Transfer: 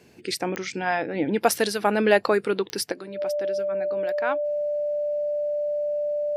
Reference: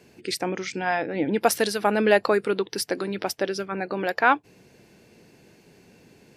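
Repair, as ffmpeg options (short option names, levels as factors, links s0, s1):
-af "adeclick=t=4,bandreject=f=590:w=30,asetnsamples=n=441:p=0,asendcmd='2.92 volume volume 9.5dB',volume=1"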